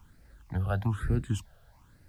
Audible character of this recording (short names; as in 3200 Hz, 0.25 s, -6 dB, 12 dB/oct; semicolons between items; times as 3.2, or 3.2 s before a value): phasing stages 8, 1.1 Hz, lowest notch 280–1000 Hz; a quantiser's noise floor 12-bit, dither triangular